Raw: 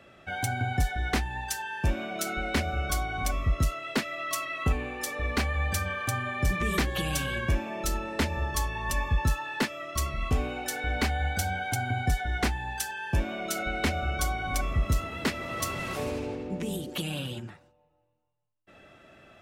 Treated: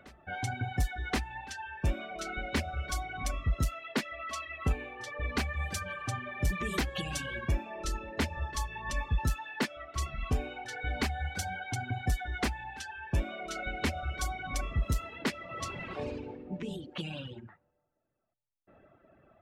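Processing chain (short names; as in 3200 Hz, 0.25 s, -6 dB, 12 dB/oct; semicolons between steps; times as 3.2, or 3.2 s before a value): low-pass opened by the level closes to 1100 Hz, open at -22.5 dBFS; reverb removal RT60 1.4 s; reverse echo 1.076 s -22.5 dB; gain -3 dB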